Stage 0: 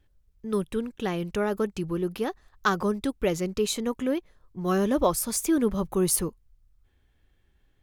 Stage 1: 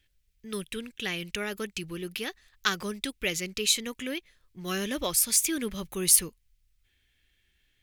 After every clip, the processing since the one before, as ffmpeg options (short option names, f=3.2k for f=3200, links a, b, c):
-af "highshelf=f=1.5k:t=q:w=1.5:g=13.5,volume=-8dB"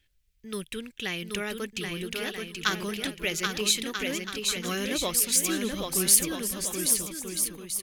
-af "aecho=1:1:780|1287|1617|1831|1970:0.631|0.398|0.251|0.158|0.1"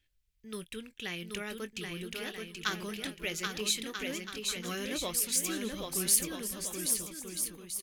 -filter_complex "[0:a]asplit=2[a][b];[b]adelay=23,volume=-14dB[c];[a][c]amix=inputs=2:normalize=0,volume=-6.5dB"